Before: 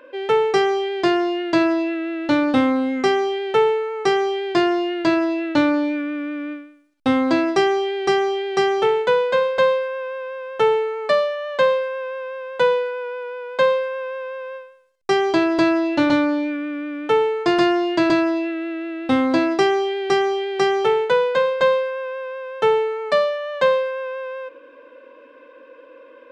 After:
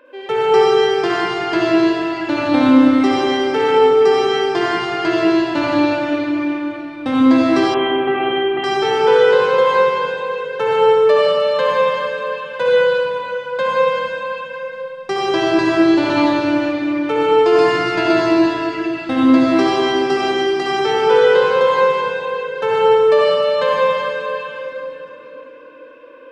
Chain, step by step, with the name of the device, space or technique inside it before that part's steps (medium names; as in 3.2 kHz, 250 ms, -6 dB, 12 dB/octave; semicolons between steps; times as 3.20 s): tunnel (flutter echo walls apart 9.7 m, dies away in 0.29 s; reverberation RT60 3.3 s, pre-delay 59 ms, DRR -6.5 dB); 7.74–8.64 s: Chebyshev low-pass 3.3 kHz, order 6; trim -3.5 dB